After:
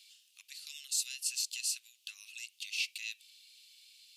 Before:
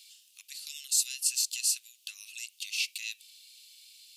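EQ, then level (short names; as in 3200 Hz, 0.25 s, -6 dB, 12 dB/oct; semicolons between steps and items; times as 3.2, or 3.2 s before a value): high shelf 4700 Hz -9.5 dB; 0.0 dB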